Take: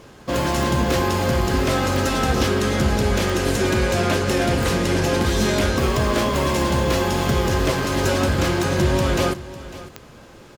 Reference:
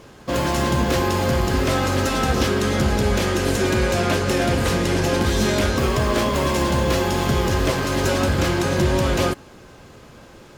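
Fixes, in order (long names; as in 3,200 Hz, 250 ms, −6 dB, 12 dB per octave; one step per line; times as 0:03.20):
click removal
echo removal 551 ms −16.5 dB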